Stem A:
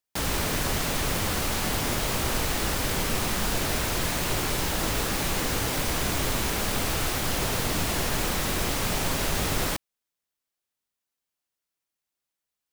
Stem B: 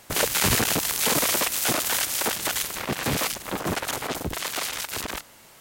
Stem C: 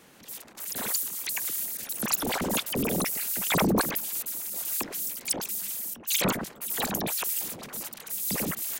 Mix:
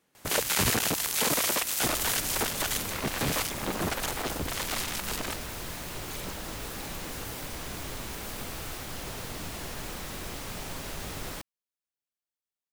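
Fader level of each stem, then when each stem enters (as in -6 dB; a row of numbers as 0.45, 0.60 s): -11.0, -4.0, -17.5 dB; 1.65, 0.15, 0.00 s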